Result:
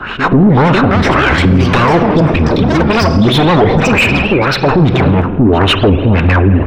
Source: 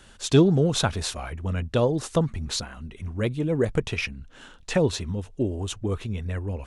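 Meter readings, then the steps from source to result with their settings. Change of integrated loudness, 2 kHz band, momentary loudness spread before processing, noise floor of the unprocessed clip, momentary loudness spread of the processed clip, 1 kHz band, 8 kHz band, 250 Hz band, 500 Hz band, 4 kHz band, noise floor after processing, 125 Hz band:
+16.0 dB, +21.5 dB, 13 LU, -50 dBFS, 2 LU, +23.5 dB, +2.5 dB, +17.0 dB, +13.5 dB, +15.0 dB, -17 dBFS, +15.5 dB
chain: comb filter that takes the minimum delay 0.74 ms; bass shelf 170 Hz +5 dB; compression, threshold -24 dBFS, peak gain reduction 12.5 dB; LFO low-pass sine 1.8 Hz 210–3100 Hz; reverse echo 143 ms -21.5 dB; spring tank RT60 1.7 s, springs 44 ms, chirp 70 ms, DRR 13 dB; overdrive pedal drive 24 dB, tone 1.3 kHz, clips at -11.5 dBFS; ever faster or slower copies 505 ms, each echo +6 st, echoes 2, each echo -6 dB; loudness maximiser +19 dB; warped record 78 rpm, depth 160 cents; trim -1 dB

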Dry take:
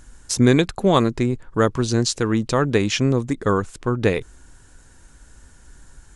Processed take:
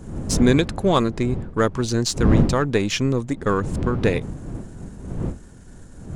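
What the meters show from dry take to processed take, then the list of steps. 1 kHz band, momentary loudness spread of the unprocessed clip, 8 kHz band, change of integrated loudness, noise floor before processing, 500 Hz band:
-1.0 dB, 6 LU, -1.5 dB, -1.0 dB, -49 dBFS, -1.5 dB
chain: partial rectifier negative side -3 dB; wind noise 190 Hz -26 dBFS

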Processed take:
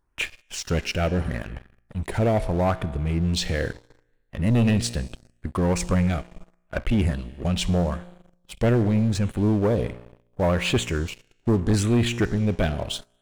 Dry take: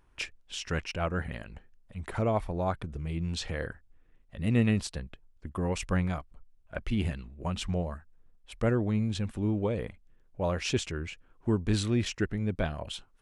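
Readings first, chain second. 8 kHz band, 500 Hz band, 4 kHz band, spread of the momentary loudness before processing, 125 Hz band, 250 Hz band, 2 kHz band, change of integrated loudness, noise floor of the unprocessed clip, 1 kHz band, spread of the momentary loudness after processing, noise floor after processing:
+8.0 dB, +7.5 dB, +7.5 dB, 15 LU, +8.0 dB, +7.5 dB, +6.5 dB, +7.5 dB, -62 dBFS, +6.0 dB, 13 LU, -66 dBFS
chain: feedback comb 59 Hz, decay 1.4 s, harmonics all, mix 50%; LFO notch sine 0.77 Hz 1–5.7 kHz; waveshaping leveller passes 3; trim +4 dB

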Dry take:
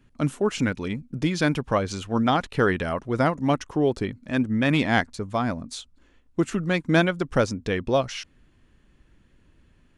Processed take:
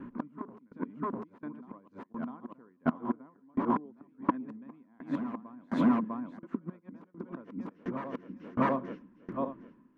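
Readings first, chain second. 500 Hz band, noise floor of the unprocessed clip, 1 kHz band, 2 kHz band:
-14.5 dB, -61 dBFS, -8.0 dB, -18.5 dB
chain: backward echo that repeats 378 ms, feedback 45%, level -10 dB; Bessel low-pass 8.2 kHz; treble shelf 5.2 kHz -3.5 dB; in parallel at -1.5 dB: compression 5:1, threshold -37 dBFS, peak gain reduction 21 dB; on the sum: inverted gate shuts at -17 dBFS, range -34 dB; wavefolder -29 dBFS; three-band isolator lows -19 dB, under 160 Hz, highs -23 dB, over 2 kHz; small resonant body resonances 240/1000 Hz, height 15 dB, ringing for 25 ms; on a send: reverse echo 650 ms -9.5 dB; on the sum: sawtooth tremolo in dB decaying 1.4 Hz, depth 26 dB; trim +7 dB

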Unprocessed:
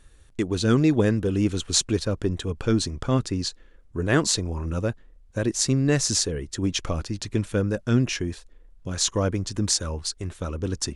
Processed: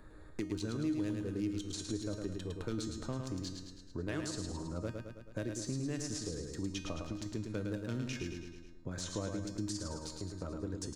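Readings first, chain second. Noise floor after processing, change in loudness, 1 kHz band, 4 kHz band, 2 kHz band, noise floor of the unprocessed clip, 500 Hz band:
-52 dBFS, -15.0 dB, -15.0 dB, -17.5 dB, -15.5 dB, -53 dBFS, -14.5 dB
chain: local Wiener filter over 15 samples; peak limiter -14.5 dBFS, peak gain reduction 10.5 dB; feedback comb 310 Hz, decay 0.46 s, harmonics all, mix 80%; on a send: feedback delay 107 ms, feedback 45%, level -5.5 dB; on the sum: three bands compressed up and down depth 70%; trim -2.5 dB

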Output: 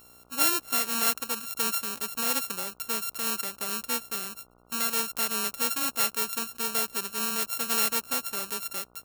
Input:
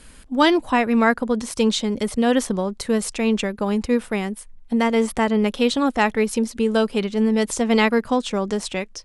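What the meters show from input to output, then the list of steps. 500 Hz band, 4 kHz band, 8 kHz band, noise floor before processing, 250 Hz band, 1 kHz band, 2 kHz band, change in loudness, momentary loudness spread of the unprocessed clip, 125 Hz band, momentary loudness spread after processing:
-19.0 dB, -3.0 dB, +3.5 dB, -46 dBFS, -21.5 dB, -10.0 dB, -9.0 dB, -6.5 dB, 7 LU, no reading, 8 LU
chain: sorted samples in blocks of 32 samples; mains buzz 60 Hz, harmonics 24, -38 dBFS -6 dB/octave; RIAA curve recording; trim -13.5 dB

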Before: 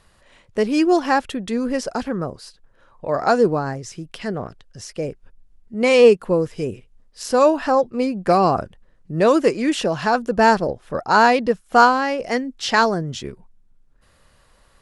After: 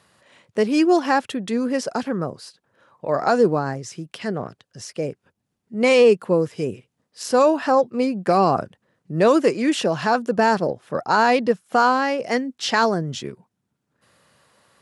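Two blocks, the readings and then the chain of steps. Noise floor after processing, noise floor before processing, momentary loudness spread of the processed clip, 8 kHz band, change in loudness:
-77 dBFS, -57 dBFS, 14 LU, -0.5 dB, -1.5 dB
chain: high-pass 110 Hz 24 dB/octave; peak limiter -7 dBFS, peak gain reduction 6.5 dB

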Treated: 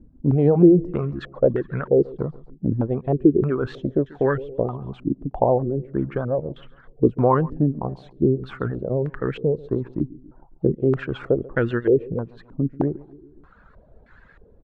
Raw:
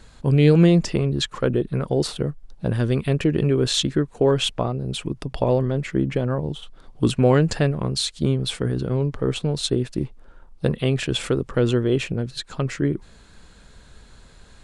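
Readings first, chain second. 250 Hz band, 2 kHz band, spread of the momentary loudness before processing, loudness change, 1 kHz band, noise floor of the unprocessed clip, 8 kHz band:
+0.5 dB, -3.0 dB, 11 LU, -0.5 dB, +3.5 dB, -49 dBFS, under -35 dB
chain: vibrato 8.4 Hz 67 cents; reverb removal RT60 0.77 s; on a send: feedback delay 138 ms, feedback 53%, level -21 dB; on the sum: step-sequenced low-pass 3.2 Hz 280–1700 Hz; trim -2.5 dB

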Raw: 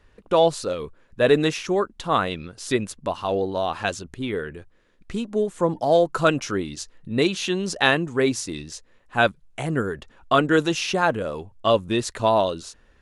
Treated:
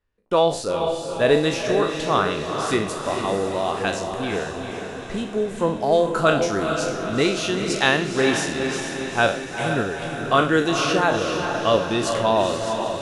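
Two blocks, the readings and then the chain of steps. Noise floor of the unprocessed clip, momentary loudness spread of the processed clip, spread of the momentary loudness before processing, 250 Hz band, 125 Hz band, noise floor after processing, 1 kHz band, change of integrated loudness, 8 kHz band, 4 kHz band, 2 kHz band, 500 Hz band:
-59 dBFS, 7 LU, 13 LU, +1.5 dB, +1.0 dB, -33 dBFS, +2.0 dB, +1.5 dB, +3.0 dB, +2.5 dB, +2.5 dB, +1.5 dB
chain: spectral sustain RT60 0.40 s; echo that smears into a reverb 455 ms, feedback 59%, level -5.5 dB; gate with hold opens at -27 dBFS; trim -1 dB

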